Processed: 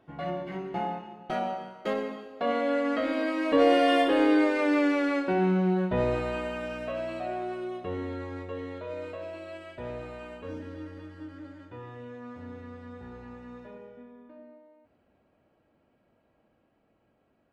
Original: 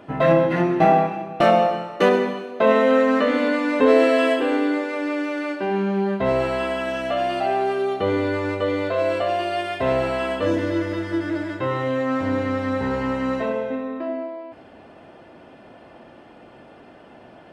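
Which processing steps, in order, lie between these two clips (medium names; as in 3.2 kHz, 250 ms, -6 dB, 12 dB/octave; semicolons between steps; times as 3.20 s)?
Doppler pass-by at 4.73 s, 26 m/s, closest 16 m; bass shelf 120 Hz +9.5 dB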